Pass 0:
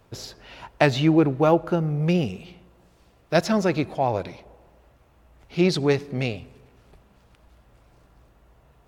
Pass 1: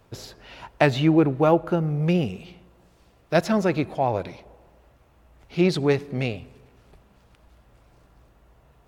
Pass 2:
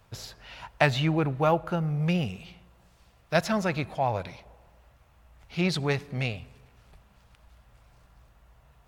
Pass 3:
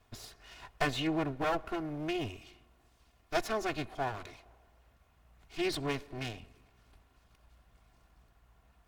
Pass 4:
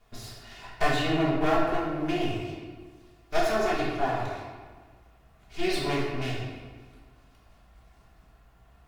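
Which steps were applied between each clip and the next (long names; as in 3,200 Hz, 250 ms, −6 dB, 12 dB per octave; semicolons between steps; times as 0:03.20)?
dynamic equaliser 5,400 Hz, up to −5 dB, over −48 dBFS, Q 1.4
parametric band 340 Hz −11 dB 1.4 octaves
lower of the sound and its delayed copy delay 2.8 ms; level −5.5 dB
convolution reverb RT60 1.4 s, pre-delay 5 ms, DRR −6 dB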